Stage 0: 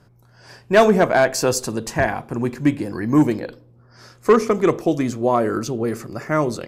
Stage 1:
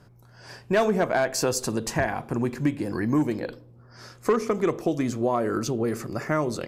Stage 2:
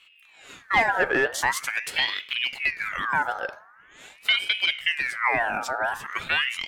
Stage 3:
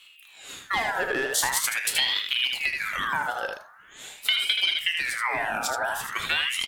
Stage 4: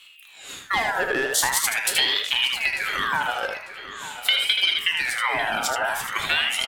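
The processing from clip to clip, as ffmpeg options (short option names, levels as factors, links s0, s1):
-af "acompressor=threshold=0.0708:ratio=2.5"
-af "equalizer=f=570:t=o:w=0.68:g=6.5,aeval=exprs='val(0)*sin(2*PI*1900*n/s+1900*0.45/0.44*sin(2*PI*0.44*n/s))':c=same"
-filter_complex "[0:a]asplit=2[s0][s1];[s1]aecho=0:1:31|78:0.266|0.501[s2];[s0][s2]amix=inputs=2:normalize=0,acompressor=threshold=0.0708:ratio=6,aexciter=amount=3:drive=2.4:freq=3200"
-filter_complex "[0:a]asplit=2[s0][s1];[s1]adelay=896,lowpass=f=3500:p=1,volume=0.237,asplit=2[s2][s3];[s3]adelay=896,lowpass=f=3500:p=1,volume=0.54,asplit=2[s4][s5];[s5]adelay=896,lowpass=f=3500:p=1,volume=0.54,asplit=2[s6][s7];[s7]adelay=896,lowpass=f=3500:p=1,volume=0.54,asplit=2[s8][s9];[s9]adelay=896,lowpass=f=3500:p=1,volume=0.54,asplit=2[s10][s11];[s11]adelay=896,lowpass=f=3500:p=1,volume=0.54[s12];[s0][s2][s4][s6][s8][s10][s12]amix=inputs=7:normalize=0,volume=1.41"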